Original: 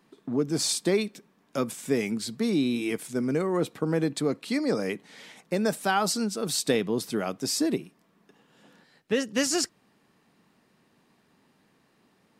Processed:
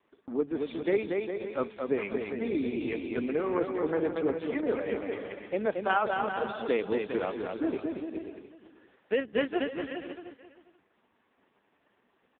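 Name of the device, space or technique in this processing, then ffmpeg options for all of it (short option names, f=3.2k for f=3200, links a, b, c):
satellite phone: -af "adynamicequalizer=threshold=0.00562:dfrequency=5700:dqfactor=3.8:tfrequency=5700:tqfactor=3.8:attack=5:release=100:ratio=0.375:range=2:mode=cutabove:tftype=bell,highpass=340,lowpass=3.3k,aecho=1:1:230|402.5|531.9|628.9|701.7:0.631|0.398|0.251|0.158|0.1,aecho=1:1:486:0.168" -ar 8000 -c:a libopencore_amrnb -b:a 4750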